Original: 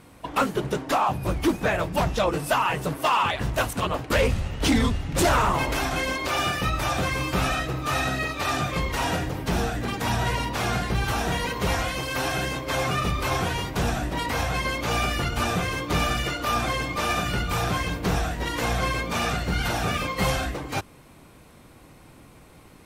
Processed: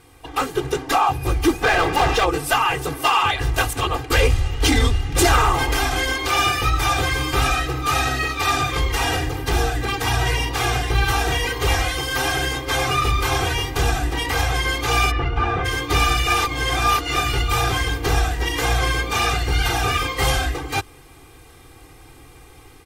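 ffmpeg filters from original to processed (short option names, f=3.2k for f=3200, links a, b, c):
-filter_complex "[0:a]asplit=3[a][b][c];[a]afade=t=out:st=1.62:d=0.02[d];[b]asplit=2[e][f];[f]highpass=f=720:p=1,volume=26dB,asoftclip=type=tanh:threshold=-13.5dB[g];[e][g]amix=inputs=2:normalize=0,lowpass=f=1.7k:p=1,volume=-6dB,afade=t=in:st=1.62:d=0.02,afade=t=out:st=2.24:d=0.02[h];[c]afade=t=in:st=2.24:d=0.02[i];[d][h][i]amix=inputs=3:normalize=0,asplit=3[j][k][l];[j]afade=t=out:st=15.1:d=0.02[m];[k]lowpass=1.8k,afade=t=in:st=15.1:d=0.02,afade=t=out:st=15.64:d=0.02[n];[l]afade=t=in:st=15.64:d=0.02[o];[m][n][o]amix=inputs=3:normalize=0,asplit=3[p][q][r];[p]atrim=end=16.272[s];[q]atrim=start=16.268:end=17.162,asetpts=PTS-STARTPTS,areverse[t];[r]atrim=start=17.158[u];[s][t]acrossfade=d=0.004:c1=hsin:c2=hsin[v];[v][u]acrossfade=d=0.004:c1=hsin:c2=hsin,dynaudnorm=f=330:g=3:m=4dB,equalizer=f=380:w=0.31:g=-4,aecho=1:1:2.5:1"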